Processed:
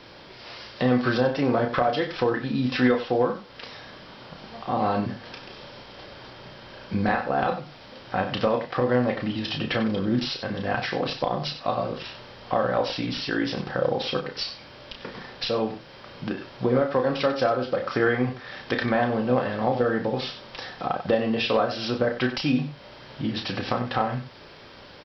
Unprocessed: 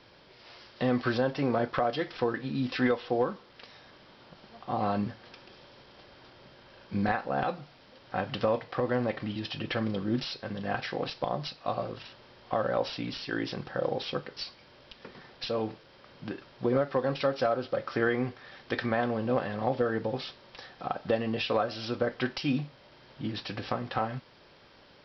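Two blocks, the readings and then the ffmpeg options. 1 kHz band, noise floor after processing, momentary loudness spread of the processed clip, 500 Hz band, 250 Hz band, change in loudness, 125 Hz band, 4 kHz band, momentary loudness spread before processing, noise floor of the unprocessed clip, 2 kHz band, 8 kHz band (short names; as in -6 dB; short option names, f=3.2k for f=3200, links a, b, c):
+6.0 dB, -46 dBFS, 19 LU, +5.5 dB, +6.0 dB, +5.5 dB, +5.5 dB, +7.0 dB, 16 LU, -57 dBFS, +6.0 dB, n/a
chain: -filter_complex "[0:a]aecho=1:1:32.07|93.29:0.501|0.251,asplit=2[a][b];[b]acompressor=threshold=-39dB:ratio=6,volume=1.5dB[c];[a][c]amix=inputs=2:normalize=0,volume=2.5dB"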